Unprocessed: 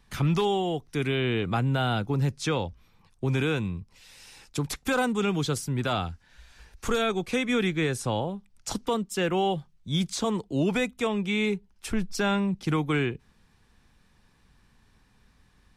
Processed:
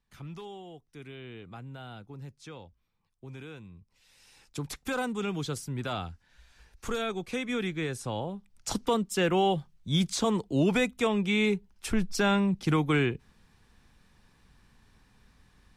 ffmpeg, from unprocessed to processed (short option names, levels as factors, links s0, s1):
-af "volume=1.06,afade=t=in:st=3.68:d=1:silence=0.251189,afade=t=in:st=8.13:d=0.66:silence=0.473151"